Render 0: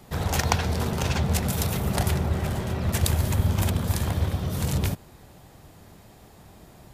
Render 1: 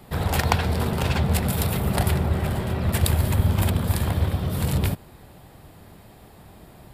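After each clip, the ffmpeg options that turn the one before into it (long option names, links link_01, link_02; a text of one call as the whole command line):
ffmpeg -i in.wav -af "equalizer=frequency=6200:width=3:gain=-11.5,volume=2.5dB" out.wav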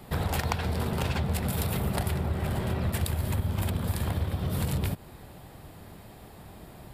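ffmpeg -i in.wav -af "acompressor=threshold=-25dB:ratio=6" out.wav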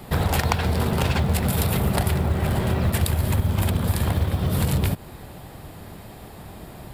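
ffmpeg -i in.wav -af "acrusher=bits=8:mode=log:mix=0:aa=0.000001,volume=7dB" out.wav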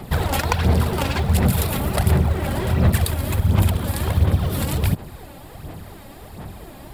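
ffmpeg -i in.wav -af "aphaser=in_gain=1:out_gain=1:delay=3.7:decay=0.51:speed=1.4:type=sinusoidal" out.wav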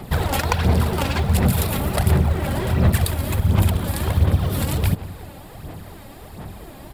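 ffmpeg -i in.wav -filter_complex "[0:a]asplit=2[link_01][link_02];[link_02]adelay=177,lowpass=frequency=3600:poles=1,volume=-18dB,asplit=2[link_03][link_04];[link_04]adelay=177,lowpass=frequency=3600:poles=1,volume=0.54,asplit=2[link_05][link_06];[link_06]adelay=177,lowpass=frequency=3600:poles=1,volume=0.54,asplit=2[link_07][link_08];[link_08]adelay=177,lowpass=frequency=3600:poles=1,volume=0.54,asplit=2[link_09][link_10];[link_10]adelay=177,lowpass=frequency=3600:poles=1,volume=0.54[link_11];[link_01][link_03][link_05][link_07][link_09][link_11]amix=inputs=6:normalize=0" out.wav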